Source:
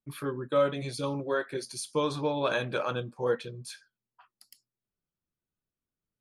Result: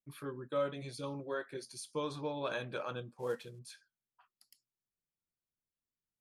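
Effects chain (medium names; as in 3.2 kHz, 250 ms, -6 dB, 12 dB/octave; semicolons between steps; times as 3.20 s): 3.18–3.59 s: CVSD coder 64 kbps; trim -9 dB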